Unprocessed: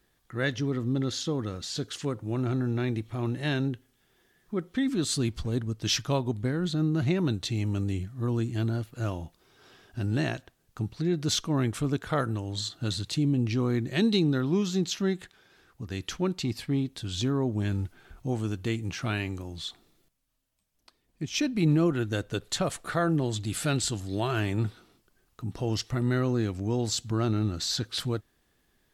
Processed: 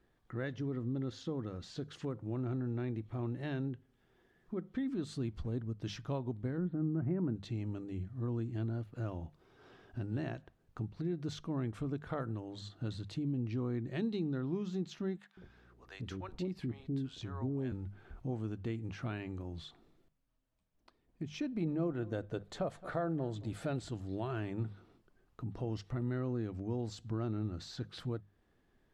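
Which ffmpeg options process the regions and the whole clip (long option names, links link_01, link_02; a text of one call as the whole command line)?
ffmpeg -i in.wav -filter_complex "[0:a]asettb=1/sr,asplit=3[link_01][link_02][link_03];[link_01]atrim=end=6.584[link_04];[link_02]atrim=start=6.58:end=7.36,asetpts=PTS-STARTPTS,afade=type=in:duration=0.004:curve=qsin,afade=type=out:start_time=0.776:duration=0.004:curve=qsin,lowpass=frequency=1800:width=0.5412,lowpass=frequency=1800:width=1.3066,equalizer=frequency=230:width=1.1:gain=6[link_05];[link_03]atrim=start=7.356[link_06];[link_04][link_05]acrossfade=duration=0.004:curve1=hsin:curve2=qsin[link_07];[link_07][link_06]acrossfade=duration=0.004:curve1=qsin:curve2=hsin,asettb=1/sr,asplit=3[link_08][link_09][link_10];[link_08]atrim=end=15.174[link_11];[link_09]atrim=start=15.17:end=17.72,asetpts=PTS-STARTPTS,afade=type=in:duration=0.004:curve=qsin,afade=type=out:start_time=2.546:duration=0.004:curve=qsin,aeval=exprs='val(0)+0.000708*(sin(2*PI*60*n/s)+sin(2*PI*2*60*n/s)/2+sin(2*PI*3*60*n/s)/3+sin(2*PI*4*60*n/s)/4+sin(2*PI*5*60*n/s)/5)':channel_layout=same,acrossover=split=610[link_12][link_13];[link_12]adelay=200[link_14];[link_14][link_13]amix=inputs=2:normalize=0,atrim=end_sample=112455[link_15];[link_10]atrim=start=17.716[link_16];[link_11][link_15]acrossfade=duration=0.004:curve1=hsin:curve2=qsin[link_17];[link_17][link_16]acrossfade=duration=0.004:curve1=qsin:curve2=hsin,asettb=1/sr,asplit=3[link_18][link_19][link_20];[link_18]atrim=end=21.524[link_21];[link_19]atrim=start=21.52:end=23.89,asetpts=PTS-STARTPTS,afade=type=in:duration=0.004:curve=qsin,afade=type=out:start_time=2.366:duration=0.004:curve=qsin,equalizer=frequency=620:width=1.5:gain=6.5,bandreject=frequency=2800:width=24,aecho=1:1:218:0.0794,atrim=end_sample=104517[link_22];[link_20]atrim=start=23.886[link_23];[link_21][link_22]acrossfade=duration=0.004:curve1=hsin:curve2=qsin[link_24];[link_24][link_23]acrossfade=duration=0.004:curve1=qsin:curve2=hsin,acompressor=threshold=-40dB:ratio=2,lowpass=frequency=1100:poles=1,bandreject=frequency=50:width_type=h:width=6,bandreject=frequency=100:width_type=h:width=6,bandreject=frequency=150:width_type=h:width=6,bandreject=frequency=200:width_type=h:width=6" out.wav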